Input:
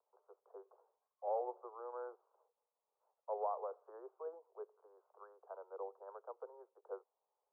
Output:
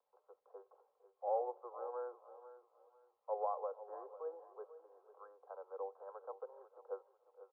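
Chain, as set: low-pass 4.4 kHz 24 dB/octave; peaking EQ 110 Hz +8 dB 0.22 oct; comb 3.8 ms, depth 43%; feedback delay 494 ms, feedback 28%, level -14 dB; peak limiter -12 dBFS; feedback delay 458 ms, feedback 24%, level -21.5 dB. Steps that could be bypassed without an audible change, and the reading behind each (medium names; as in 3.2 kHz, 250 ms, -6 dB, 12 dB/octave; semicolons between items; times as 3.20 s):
low-pass 4.4 kHz: input has nothing above 1.4 kHz; peaking EQ 110 Hz: input has nothing below 320 Hz; peak limiter -12 dBFS: peak at its input -26.0 dBFS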